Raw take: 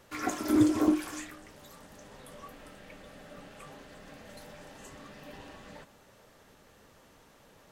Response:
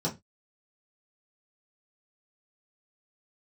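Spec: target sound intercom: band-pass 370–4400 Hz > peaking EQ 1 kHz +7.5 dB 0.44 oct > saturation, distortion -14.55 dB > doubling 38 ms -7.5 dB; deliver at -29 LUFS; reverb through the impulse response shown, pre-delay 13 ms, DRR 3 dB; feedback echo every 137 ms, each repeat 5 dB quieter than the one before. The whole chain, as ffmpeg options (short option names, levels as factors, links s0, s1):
-filter_complex "[0:a]aecho=1:1:137|274|411|548|685|822|959:0.562|0.315|0.176|0.0988|0.0553|0.031|0.0173,asplit=2[s0][s1];[1:a]atrim=start_sample=2205,adelay=13[s2];[s1][s2]afir=irnorm=-1:irlink=0,volume=0.316[s3];[s0][s3]amix=inputs=2:normalize=0,highpass=370,lowpass=4400,equalizer=f=1000:t=o:w=0.44:g=7.5,asoftclip=threshold=0.0944,asplit=2[s4][s5];[s5]adelay=38,volume=0.422[s6];[s4][s6]amix=inputs=2:normalize=0,volume=2"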